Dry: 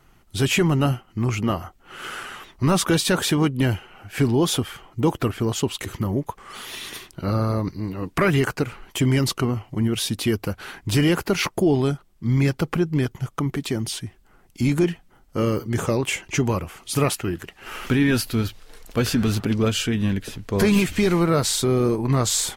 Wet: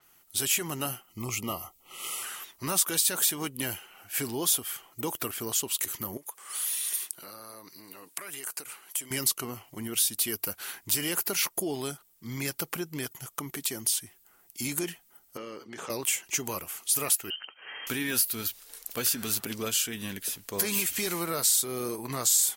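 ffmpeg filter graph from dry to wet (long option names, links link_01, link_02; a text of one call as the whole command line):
ffmpeg -i in.wav -filter_complex "[0:a]asettb=1/sr,asplit=3[link_01][link_02][link_03];[link_01]atrim=end=1.094[link_04];[link_02]atrim=start=1.09:end=2.23,asetpts=PTS-STARTPTS,afade=type=in:duration=0.004:curve=qsin,afade=type=out:start_time=1.136:duration=0.004:curve=qsin,asuperstop=centerf=1600:order=12:qfactor=2.7,lowshelf=frequency=120:gain=8.5[link_05];[link_03]atrim=start=2.226[link_06];[link_04][link_05]acrossfade=duration=0.004:curve1=hsin:curve2=qsin[link_07];[link_07][link_06]acrossfade=duration=0.004:curve1=qsin:curve2=hsin,asettb=1/sr,asplit=3[link_08][link_09][link_10];[link_08]atrim=end=6.174[link_11];[link_09]atrim=start=6.17:end=9.11,asetpts=PTS-STARTPTS,afade=type=in:duration=0.004:curve=qsin,afade=type=out:start_time=2.936:duration=0.004:curve=qsin,highpass=frequency=410:poles=1,equalizer=frequency=9400:width_type=o:width=0.59:gain=7.5,acompressor=threshold=-34dB:ratio=4:attack=3.2:release=140:knee=1:detection=peak[link_12];[link_10]atrim=start=9.106[link_13];[link_11][link_12]acrossfade=duration=0.004:curve1=hsin:curve2=qsin[link_14];[link_14][link_13]acrossfade=duration=0.004:curve1=qsin:curve2=hsin,asettb=1/sr,asplit=3[link_15][link_16][link_17];[link_15]atrim=end=15.374[link_18];[link_16]atrim=start=15.37:end=15.9,asetpts=PTS-STARTPTS,afade=type=in:duration=0.004:curve=qsin,afade=type=out:start_time=0.526:duration=0.004:curve=qsin,highpass=200,lowpass=3800,acompressor=threshold=-26dB:ratio=4:attack=3.2:release=140:knee=1:detection=peak[link_19];[link_17]atrim=start=15.896[link_20];[link_18][link_19]acrossfade=duration=0.004:curve1=hsin:curve2=qsin[link_21];[link_21][link_20]acrossfade=duration=0.004:curve1=qsin:curve2=hsin,asettb=1/sr,asplit=3[link_22][link_23][link_24];[link_22]atrim=end=17.304[link_25];[link_23]atrim=start=17.3:end=17.87,asetpts=PTS-STARTPTS,afade=type=in:duration=0.004:curve=qsin,afade=type=out:start_time=0.566:duration=0.004:curve=qsin,acompressor=threshold=-33dB:ratio=1.5:attack=3.2:release=140:knee=1:detection=peak,lowpass=frequency=2700:width_type=q:width=0.5098,lowpass=frequency=2700:width_type=q:width=0.6013,lowpass=frequency=2700:width_type=q:width=0.9,lowpass=frequency=2700:width_type=q:width=2.563,afreqshift=-3200[link_26];[link_24]atrim=start=17.866[link_27];[link_25][link_26]acrossfade=duration=0.004:curve1=hsin:curve2=qsin[link_28];[link_28][link_27]acrossfade=duration=0.004:curve1=qsin:curve2=hsin,aemphasis=mode=production:type=riaa,acompressor=threshold=-21dB:ratio=2,adynamicequalizer=threshold=0.0158:dfrequency=6300:dqfactor=0.7:tfrequency=6300:tqfactor=0.7:attack=5:release=100:ratio=0.375:range=2:mode=boostabove:tftype=highshelf,volume=-7.5dB" out.wav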